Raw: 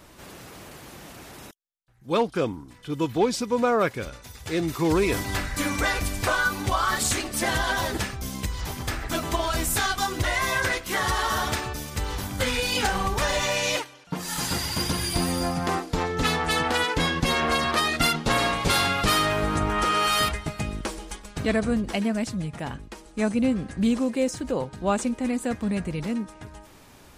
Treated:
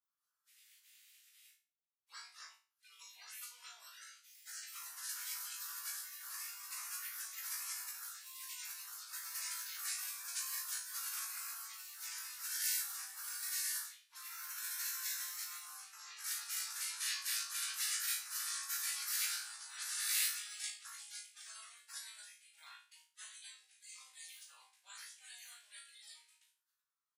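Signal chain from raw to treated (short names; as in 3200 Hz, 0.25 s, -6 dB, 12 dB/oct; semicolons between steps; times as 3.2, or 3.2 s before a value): per-bin compression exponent 0.6; dynamic EQ 3200 Hz, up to +7 dB, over -41 dBFS, Q 2.6; flange 0.82 Hz, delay 6.1 ms, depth 8.4 ms, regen -62%; spectral noise reduction 30 dB; limiter -17.5 dBFS, peak gain reduction 8.5 dB; ladder high-pass 1900 Hz, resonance 50%; differentiator; doubler 39 ms -8 dB; spectral gate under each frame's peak -20 dB weak; flutter echo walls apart 3.1 m, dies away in 0.35 s; gain +11.5 dB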